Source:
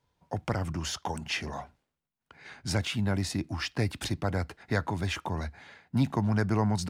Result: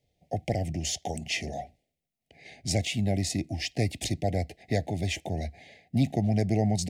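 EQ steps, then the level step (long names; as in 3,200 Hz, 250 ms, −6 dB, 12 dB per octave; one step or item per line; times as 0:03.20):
elliptic band-stop filter 680–2,000 Hz, stop band 50 dB
parametric band 800 Hz +10.5 dB 0.56 octaves
dynamic equaliser 7,200 Hz, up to +6 dB, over −54 dBFS, Q 2
+1.5 dB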